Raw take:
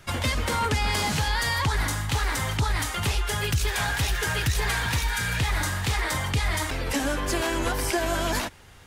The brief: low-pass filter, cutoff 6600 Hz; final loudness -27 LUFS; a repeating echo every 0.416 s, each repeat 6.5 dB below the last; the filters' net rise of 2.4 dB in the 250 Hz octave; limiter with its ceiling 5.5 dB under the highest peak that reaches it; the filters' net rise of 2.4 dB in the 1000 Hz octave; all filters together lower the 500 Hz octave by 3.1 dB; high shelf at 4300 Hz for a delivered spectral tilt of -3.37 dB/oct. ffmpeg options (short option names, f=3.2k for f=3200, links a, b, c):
-af "lowpass=6.6k,equalizer=f=250:t=o:g=5.5,equalizer=f=500:t=o:g=-8,equalizer=f=1k:t=o:g=4.5,highshelf=f=4.3k:g=6.5,alimiter=limit=-18.5dB:level=0:latency=1,aecho=1:1:416|832|1248|1664|2080|2496:0.473|0.222|0.105|0.0491|0.0231|0.0109,volume=-1dB"